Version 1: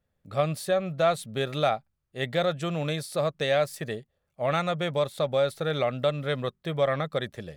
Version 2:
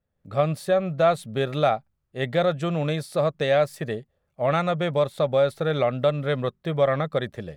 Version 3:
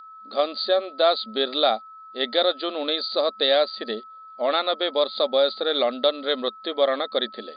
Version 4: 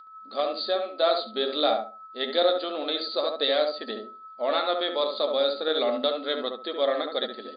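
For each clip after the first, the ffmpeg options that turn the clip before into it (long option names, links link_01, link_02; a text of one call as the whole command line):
ffmpeg -i in.wav -af "highshelf=frequency=2500:gain=-8,dynaudnorm=framelen=130:gausssize=3:maxgain=7dB,volume=-2.5dB" out.wav
ffmpeg -i in.wav -af "aeval=exprs='val(0)+0.00891*sin(2*PI*1300*n/s)':channel_layout=same,aexciter=amount=11.3:drive=6.2:freq=3800,afftfilt=real='re*between(b*sr/4096,210,4800)':imag='im*between(b*sr/4096,210,4800)':win_size=4096:overlap=0.75" out.wav
ffmpeg -i in.wav -filter_complex "[0:a]flanger=delay=6.2:depth=8:regen=55:speed=0.28:shape=triangular,asplit=2[link_01][link_02];[link_02]adelay=70,lowpass=frequency=1200:poles=1,volume=-3dB,asplit=2[link_03][link_04];[link_04]adelay=70,lowpass=frequency=1200:poles=1,volume=0.26,asplit=2[link_05][link_06];[link_06]adelay=70,lowpass=frequency=1200:poles=1,volume=0.26,asplit=2[link_07][link_08];[link_08]adelay=70,lowpass=frequency=1200:poles=1,volume=0.26[link_09];[link_03][link_05][link_07][link_09]amix=inputs=4:normalize=0[link_10];[link_01][link_10]amix=inputs=2:normalize=0" out.wav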